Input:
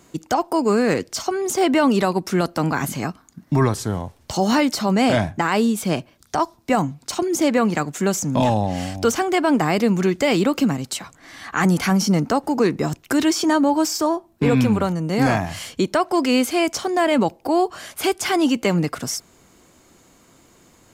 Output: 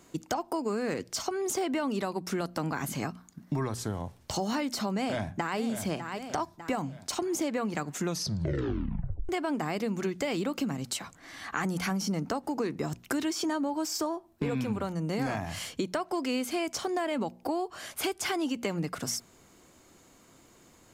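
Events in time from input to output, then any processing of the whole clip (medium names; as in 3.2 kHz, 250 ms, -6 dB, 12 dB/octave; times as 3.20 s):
4.93–5.58 s: echo throw 600 ms, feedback 40%, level -11 dB
7.94 s: tape stop 1.35 s
whole clip: hum notches 60/120/180/240 Hz; compression 5:1, threshold -23 dBFS; trim -5 dB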